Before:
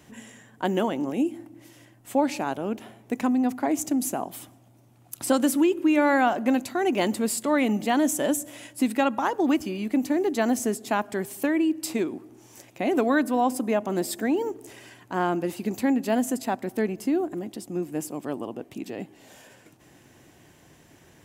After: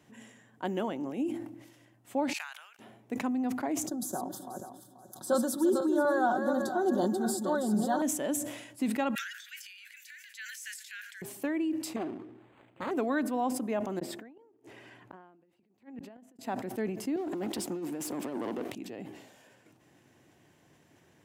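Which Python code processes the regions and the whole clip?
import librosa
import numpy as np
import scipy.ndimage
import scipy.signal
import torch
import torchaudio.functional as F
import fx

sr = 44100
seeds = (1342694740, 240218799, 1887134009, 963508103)

y = fx.chain(x, sr, fx.highpass(hz=1500.0, slope=24),
    fx.level_steps(step_db=23), at=(2.33, 2.79))
y = fx.chain(y, sr, fx.reverse_delay_fb(ms=242, feedback_pct=47, wet_db=-6.0),
    fx.cheby1_bandstop(low_hz=1600.0, high_hz=3500.0, order=3),
    fx.comb(ms=5.4, depth=0.65), at=(3.87, 8.02))
y = fx.chain(y, sr, fx.steep_highpass(hz=1500.0, slope=96),
    fx.transient(attack_db=-2, sustain_db=11),
    fx.echo_single(ms=602, db=-20.5), at=(9.15, 11.22))
y = fx.chain(y, sr, fx.self_delay(depth_ms=0.89),
    fx.quant_float(bits=2),
    fx.resample_linear(factor=8), at=(11.96, 12.91))
y = fx.chain(y, sr, fx.bass_treble(bass_db=-1, treble_db=-11),
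    fx.over_compress(threshold_db=-28.0, ratio=-0.5),
    fx.gate_flip(shuts_db=-25.0, range_db=-36), at=(13.99, 16.39))
y = fx.chain(y, sr, fx.highpass(hz=230.0, slope=12),
    fx.over_compress(threshold_db=-36.0, ratio=-1.0),
    fx.leveller(passes=3), at=(17.16, 18.72))
y = scipy.signal.sosfilt(scipy.signal.butter(2, 88.0, 'highpass', fs=sr, output='sos'), y)
y = fx.high_shelf(y, sr, hz=5300.0, db=-5.5)
y = fx.sustainer(y, sr, db_per_s=60.0)
y = y * 10.0 ** (-8.0 / 20.0)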